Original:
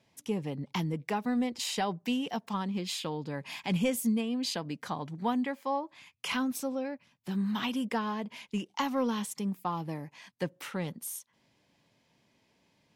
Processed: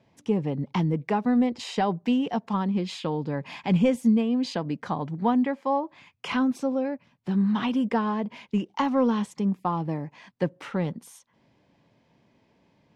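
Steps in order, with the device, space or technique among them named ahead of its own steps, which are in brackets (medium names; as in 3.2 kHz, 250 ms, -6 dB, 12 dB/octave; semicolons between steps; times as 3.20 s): through cloth (low-pass 6.9 kHz 12 dB/octave; treble shelf 2 kHz -12 dB); trim +8 dB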